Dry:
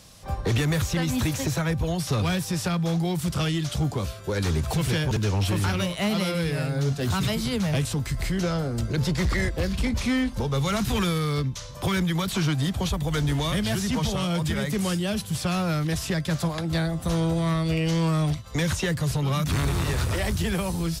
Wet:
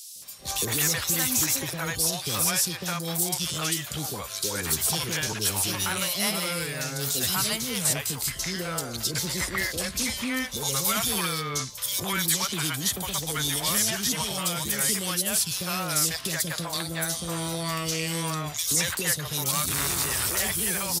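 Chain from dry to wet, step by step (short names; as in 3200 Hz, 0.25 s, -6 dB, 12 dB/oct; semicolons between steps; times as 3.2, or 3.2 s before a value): RIAA curve recording; three bands offset in time highs, lows, mids 0.16/0.22 s, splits 530/3100 Hz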